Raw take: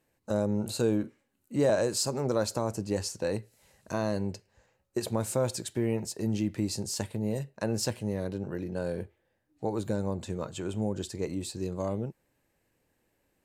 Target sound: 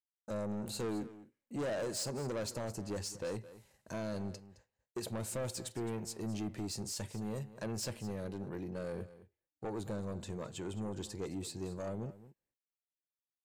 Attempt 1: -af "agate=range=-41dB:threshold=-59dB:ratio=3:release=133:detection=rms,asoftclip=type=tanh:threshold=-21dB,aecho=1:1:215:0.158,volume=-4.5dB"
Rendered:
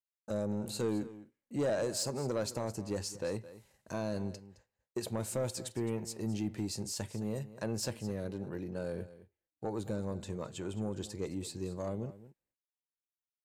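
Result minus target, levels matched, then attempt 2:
soft clipping: distortion −8 dB
-af "agate=range=-41dB:threshold=-59dB:ratio=3:release=133:detection=rms,asoftclip=type=tanh:threshold=-29dB,aecho=1:1:215:0.158,volume=-4.5dB"

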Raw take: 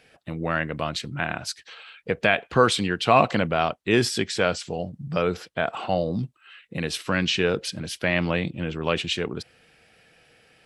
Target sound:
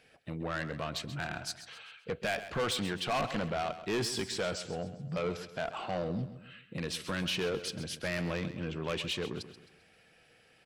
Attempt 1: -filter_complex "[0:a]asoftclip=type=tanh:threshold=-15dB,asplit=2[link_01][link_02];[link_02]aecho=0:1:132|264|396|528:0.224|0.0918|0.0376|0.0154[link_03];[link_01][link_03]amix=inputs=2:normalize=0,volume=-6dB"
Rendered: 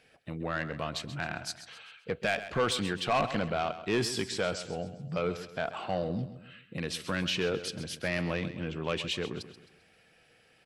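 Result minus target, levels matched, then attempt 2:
soft clipping: distortion −5 dB
-filter_complex "[0:a]asoftclip=type=tanh:threshold=-21.5dB,asplit=2[link_01][link_02];[link_02]aecho=0:1:132|264|396|528:0.224|0.0918|0.0376|0.0154[link_03];[link_01][link_03]amix=inputs=2:normalize=0,volume=-6dB"

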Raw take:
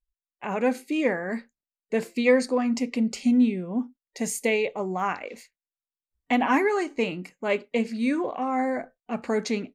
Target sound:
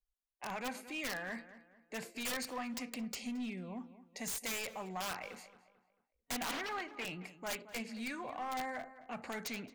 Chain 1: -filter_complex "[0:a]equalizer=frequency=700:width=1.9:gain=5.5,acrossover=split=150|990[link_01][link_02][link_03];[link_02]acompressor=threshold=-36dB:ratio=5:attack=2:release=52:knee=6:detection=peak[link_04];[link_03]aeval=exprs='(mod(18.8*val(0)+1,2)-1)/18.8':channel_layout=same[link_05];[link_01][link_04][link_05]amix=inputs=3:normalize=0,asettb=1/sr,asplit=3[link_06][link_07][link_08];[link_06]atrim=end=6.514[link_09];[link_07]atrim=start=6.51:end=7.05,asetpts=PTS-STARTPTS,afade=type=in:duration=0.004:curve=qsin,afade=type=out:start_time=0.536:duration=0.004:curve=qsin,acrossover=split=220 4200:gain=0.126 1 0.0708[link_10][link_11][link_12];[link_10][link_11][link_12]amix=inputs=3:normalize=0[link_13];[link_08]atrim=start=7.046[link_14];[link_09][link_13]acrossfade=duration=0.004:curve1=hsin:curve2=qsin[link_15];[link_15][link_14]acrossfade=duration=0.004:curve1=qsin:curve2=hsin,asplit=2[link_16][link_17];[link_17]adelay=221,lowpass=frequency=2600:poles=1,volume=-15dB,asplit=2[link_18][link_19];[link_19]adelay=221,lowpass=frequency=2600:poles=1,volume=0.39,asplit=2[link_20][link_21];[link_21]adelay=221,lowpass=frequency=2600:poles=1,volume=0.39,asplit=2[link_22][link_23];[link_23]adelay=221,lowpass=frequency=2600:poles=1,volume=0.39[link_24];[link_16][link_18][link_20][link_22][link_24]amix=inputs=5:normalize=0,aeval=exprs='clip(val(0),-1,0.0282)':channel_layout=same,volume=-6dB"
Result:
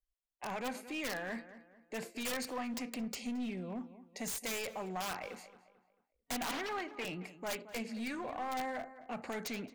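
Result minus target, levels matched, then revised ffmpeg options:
downward compressor: peak gain reduction −6 dB
-filter_complex "[0:a]equalizer=frequency=700:width=1.9:gain=5.5,acrossover=split=150|990[link_01][link_02][link_03];[link_02]acompressor=threshold=-43.5dB:ratio=5:attack=2:release=52:knee=6:detection=peak[link_04];[link_03]aeval=exprs='(mod(18.8*val(0)+1,2)-1)/18.8':channel_layout=same[link_05];[link_01][link_04][link_05]amix=inputs=3:normalize=0,asettb=1/sr,asplit=3[link_06][link_07][link_08];[link_06]atrim=end=6.514[link_09];[link_07]atrim=start=6.51:end=7.05,asetpts=PTS-STARTPTS,afade=type=in:duration=0.004:curve=qsin,afade=type=out:start_time=0.536:duration=0.004:curve=qsin,acrossover=split=220 4200:gain=0.126 1 0.0708[link_10][link_11][link_12];[link_10][link_11][link_12]amix=inputs=3:normalize=0[link_13];[link_08]atrim=start=7.046[link_14];[link_09][link_13]acrossfade=duration=0.004:curve1=hsin:curve2=qsin[link_15];[link_15][link_14]acrossfade=duration=0.004:curve1=qsin:curve2=hsin,asplit=2[link_16][link_17];[link_17]adelay=221,lowpass=frequency=2600:poles=1,volume=-15dB,asplit=2[link_18][link_19];[link_19]adelay=221,lowpass=frequency=2600:poles=1,volume=0.39,asplit=2[link_20][link_21];[link_21]adelay=221,lowpass=frequency=2600:poles=1,volume=0.39,asplit=2[link_22][link_23];[link_23]adelay=221,lowpass=frequency=2600:poles=1,volume=0.39[link_24];[link_16][link_18][link_20][link_22][link_24]amix=inputs=5:normalize=0,aeval=exprs='clip(val(0),-1,0.0282)':channel_layout=same,volume=-6dB"

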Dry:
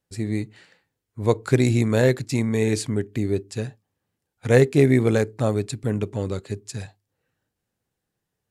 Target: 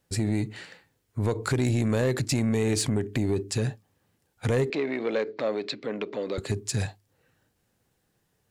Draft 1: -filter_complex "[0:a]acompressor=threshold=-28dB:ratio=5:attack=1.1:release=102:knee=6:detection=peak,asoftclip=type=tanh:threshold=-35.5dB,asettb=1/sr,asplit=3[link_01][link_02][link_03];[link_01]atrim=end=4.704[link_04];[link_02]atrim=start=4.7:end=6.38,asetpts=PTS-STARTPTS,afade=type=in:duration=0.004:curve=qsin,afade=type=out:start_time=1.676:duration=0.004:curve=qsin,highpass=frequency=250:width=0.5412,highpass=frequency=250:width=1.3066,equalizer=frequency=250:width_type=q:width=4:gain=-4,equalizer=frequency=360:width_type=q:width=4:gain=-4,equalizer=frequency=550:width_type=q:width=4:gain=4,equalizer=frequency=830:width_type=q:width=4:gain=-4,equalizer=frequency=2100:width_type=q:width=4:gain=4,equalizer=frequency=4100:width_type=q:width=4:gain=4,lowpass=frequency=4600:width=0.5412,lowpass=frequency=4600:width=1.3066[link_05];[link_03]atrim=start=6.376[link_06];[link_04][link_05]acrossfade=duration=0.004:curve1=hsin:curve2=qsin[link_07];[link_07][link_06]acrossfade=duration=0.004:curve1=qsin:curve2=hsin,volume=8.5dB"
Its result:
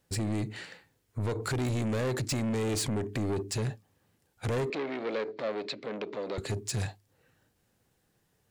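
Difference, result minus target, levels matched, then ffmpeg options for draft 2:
soft clipping: distortion +12 dB
-filter_complex "[0:a]acompressor=threshold=-28dB:ratio=5:attack=1.1:release=102:knee=6:detection=peak,asoftclip=type=tanh:threshold=-24.5dB,asettb=1/sr,asplit=3[link_01][link_02][link_03];[link_01]atrim=end=4.704[link_04];[link_02]atrim=start=4.7:end=6.38,asetpts=PTS-STARTPTS,afade=type=in:duration=0.004:curve=qsin,afade=type=out:start_time=1.676:duration=0.004:curve=qsin,highpass=frequency=250:width=0.5412,highpass=frequency=250:width=1.3066,equalizer=frequency=250:width_type=q:width=4:gain=-4,equalizer=frequency=360:width_type=q:width=4:gain=-4,equalizer=frequency=550:width_type=q:width=4:gain=4,equalizer=frequency=830:width_type=q:width=4:gain=-4,equalizer=frequency=2100:width_type=q:width=4:gain=4,equalizer=frequency=4100:width_type=q:width=4:gain=4,lowpass=frequency=4600:width=0.5412,lowpass=frequency=4600:width=1.3066[link_05];[link_03]atrim=start=6.376[link_06];[link_04][link_05]acrossfade=duration=0.004:curve1=hsin:curve2=qsin[link_07];[link_07][link_06]acrossfade=duration=0.004:curve1=qsin:curve2=hsin,volume=8.5dB"

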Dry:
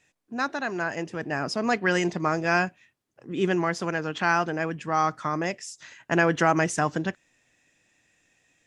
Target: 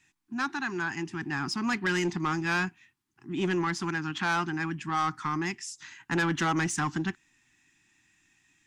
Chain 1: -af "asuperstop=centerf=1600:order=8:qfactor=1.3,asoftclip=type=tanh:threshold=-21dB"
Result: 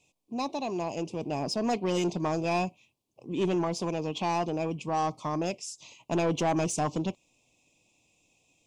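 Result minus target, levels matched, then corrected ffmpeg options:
2,000 Hz band −11.0 dB
-af "asuperstop=centerf=550:order=8:qfactor=1.3,asoftclip=type=tanh:threshold=-21dB"

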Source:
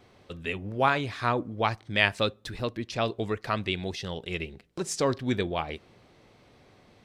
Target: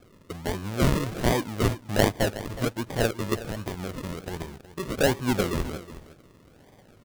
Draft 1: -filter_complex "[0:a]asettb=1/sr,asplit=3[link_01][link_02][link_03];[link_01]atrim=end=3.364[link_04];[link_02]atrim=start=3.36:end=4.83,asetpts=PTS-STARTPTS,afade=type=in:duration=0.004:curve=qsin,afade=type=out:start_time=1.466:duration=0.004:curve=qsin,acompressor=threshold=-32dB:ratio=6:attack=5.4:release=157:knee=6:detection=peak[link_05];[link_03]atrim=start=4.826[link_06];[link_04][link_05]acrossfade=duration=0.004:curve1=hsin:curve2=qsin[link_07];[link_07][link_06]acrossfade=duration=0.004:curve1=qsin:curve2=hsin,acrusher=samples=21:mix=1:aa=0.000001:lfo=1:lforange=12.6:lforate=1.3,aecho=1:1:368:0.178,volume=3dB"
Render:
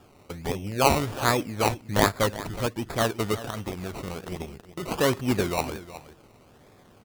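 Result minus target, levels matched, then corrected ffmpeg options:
sample-and-hold swept by an LFO: distortion −7 dB
-filter_complex "[0:a]asettb=1/sr,asplit=3[link_01][link_02][link_03];[link_01]atrim=end=3.364[link_04];[link_02]atrim=start=3.36:end=4.83,asetpts=PTS-STARTPTS,afade=type=in:duration=0.004:curve=qsin,afade=type=out:start_time=1.466:duration=0.004:curve=qsin,acompressor=threshold=-32dB:ratio=6:attack=5.4:release=157:knee=6:detection=peak[link_05];[link_03]atrim=start=4.826[link_06];[link_04][link_05]acrossfade=duration=0.004:curve1=hsin:curve2=qsin[link_07];[link_07][link_06]acrossfade=duration=0.004:curve1=qsin:curve2=hsin,acrusher=samples=45:mix=1:aa=0.000001:lfo=1:lforange=27:lforate=1.3,aecho=1:1:368:0.178,volume=3dB"

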